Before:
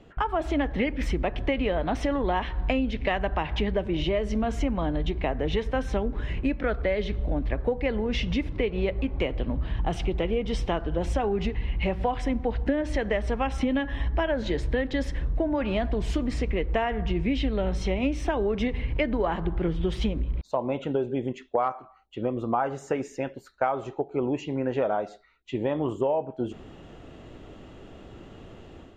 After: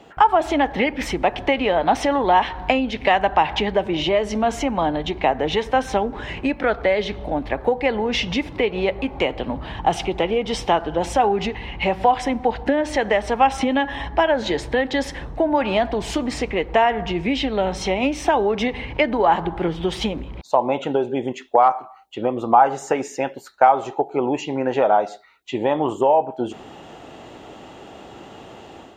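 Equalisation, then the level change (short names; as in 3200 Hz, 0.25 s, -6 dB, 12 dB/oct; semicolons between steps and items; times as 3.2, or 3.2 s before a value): HPF 270 Hz 6 dB/oct; bell 830 Hz +9 dB 0.46 oct; high shelf 3800 Hz +6.5 dB; +7.0 dB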